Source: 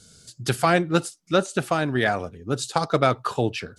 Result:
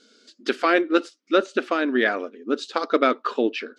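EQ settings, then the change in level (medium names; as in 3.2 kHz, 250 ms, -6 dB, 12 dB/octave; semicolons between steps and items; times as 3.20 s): brick-wall FIR high-pass 220 Hz; distance through air 210 m; peaking EQ 800 Hz -11.5 dB 0.66 oct; +5.0 dB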